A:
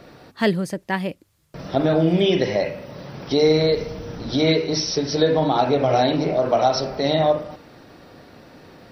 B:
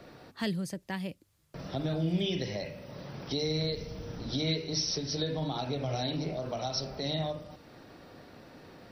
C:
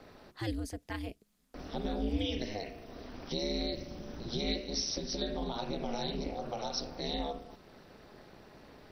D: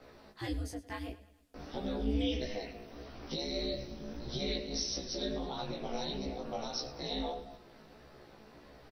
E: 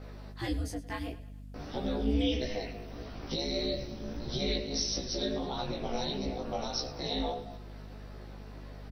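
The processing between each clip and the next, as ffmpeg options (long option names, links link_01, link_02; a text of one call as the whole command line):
ffmpeg -i in.wav -filter_complex "[0:a]acrossover=split=190|3000[link_01][link_02][link_03];[link_02]acompressor=threshold=-38dB:ratio=2[link_04];[link_01][link_04][link_03]amix=inputs=3:normalize=0,volume=-6dB" out.wav
ffmpeg -i in.wav -af "aeval=exprs='val(0)*sin(2*PI*110*n/s)':channel_layout=same" out.wav
ffmpeg -i in.wav -filter_complex "[0:a]asplit=2[link_01][link_02];[link_02]adelay=14,volume=-3dB[link_03];[link_01][link_03]amix=inputs=2:normalize=0,aecho=1:1:106|212|318|424:0.141|0.0692|0.0339|0.0166,flanger=delay=15.5:depth=3.1:speed=1.6" out.wav
ffmpeg -i in.wav -af "aeval=exprs='val(0)+0.00398*(sin(2*PI*50*n/s)+sin(2*PI*2*50*n/s)/2+sin(2*PI*3*50*n/s)/3+sin(2*PI*4*50*n/s)/4+sin(2*PI*5*50*n/s)/5)':channel_layout=same,volume=3.5dB" out.wav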